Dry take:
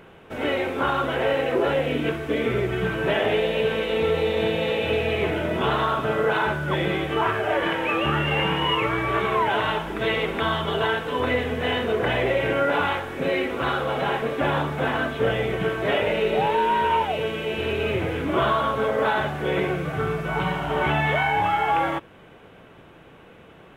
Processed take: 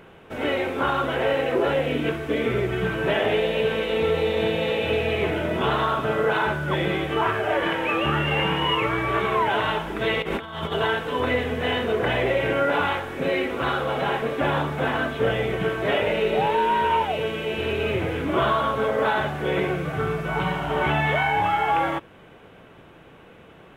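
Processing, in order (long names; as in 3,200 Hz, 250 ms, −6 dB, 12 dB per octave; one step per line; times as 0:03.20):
0:10.22–0:10.72: compressor whose output falls as the input rises −29 dBFS, ratio −0.5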